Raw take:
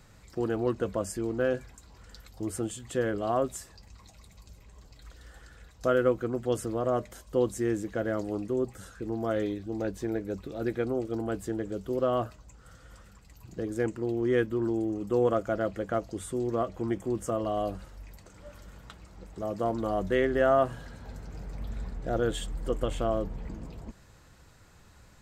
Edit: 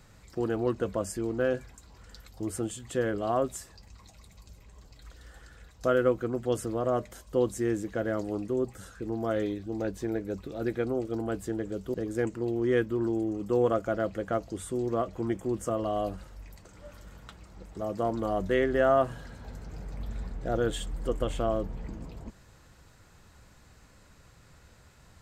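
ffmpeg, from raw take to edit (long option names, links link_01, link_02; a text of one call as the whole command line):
ffmpeg -i in.wav -filter_complex "[0:a]asplit=2[link_01][link_02];[link_01]atrim=end=11.942[link_03];[link_02]atrim=start=13.548[link_04];[link_03][link_04]acrossfade=duration=0.004:curve1=hsin:curve2=hsin" out.wav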